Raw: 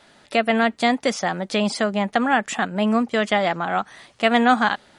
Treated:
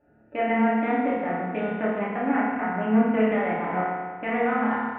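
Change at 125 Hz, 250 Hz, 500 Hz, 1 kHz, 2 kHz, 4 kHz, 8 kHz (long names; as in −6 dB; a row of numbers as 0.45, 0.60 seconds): −2.0 dB, −1.5 dB, −3.5 dB, −4.5 dB, −7.0 dB, below −20 dB, below −40 dB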